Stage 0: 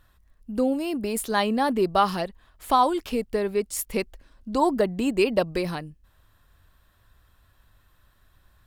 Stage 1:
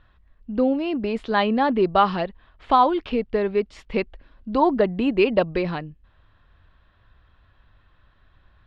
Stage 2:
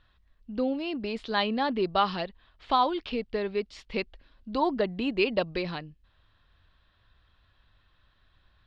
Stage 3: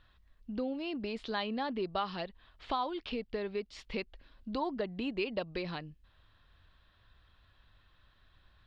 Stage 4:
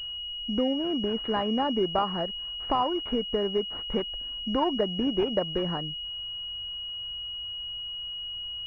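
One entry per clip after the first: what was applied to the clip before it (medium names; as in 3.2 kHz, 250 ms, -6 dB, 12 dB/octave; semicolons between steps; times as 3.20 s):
low-pass 3.6 kHz 24 dB/octave; trim +3 dB
peaking EQ 4.5 kHz +11 dB 1.5 oct; trim -8 dB
compression 2:1, threshold -38 dBFS, peak gain reduction 11 dB
class-D stage that switches slowly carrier 2.9 kHz; trim +9 dB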